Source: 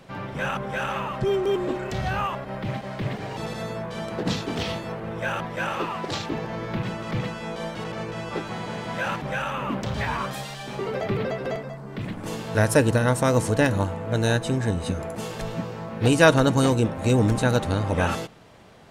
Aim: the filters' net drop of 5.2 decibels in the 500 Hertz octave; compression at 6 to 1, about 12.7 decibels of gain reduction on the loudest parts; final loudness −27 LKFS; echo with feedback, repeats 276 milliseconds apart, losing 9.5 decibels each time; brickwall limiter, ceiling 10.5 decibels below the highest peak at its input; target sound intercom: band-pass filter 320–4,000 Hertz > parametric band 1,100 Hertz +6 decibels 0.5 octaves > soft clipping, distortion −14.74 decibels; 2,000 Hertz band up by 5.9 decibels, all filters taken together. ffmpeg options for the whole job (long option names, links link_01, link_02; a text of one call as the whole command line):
ffmpeg -i in.wav -af "equalizer=frequency=500:width_type=o:gain=-6.5,equalizer=frequency=2000:width_type=o:gain=7.5,acompressor=threshold=-23dB:ratio=6,alimiter=limit=-23.5dB:level=0:latency=1,highpass=320,lowpass=4000,equalizer=frequency=1100:width_type=o:width=0.5:gain=6,aecho=1:1:276|552|828|1104:0.335|0.111|0.0365|0.012,asoftclip=threshold=-28dB,volume=7.5dB" out.wav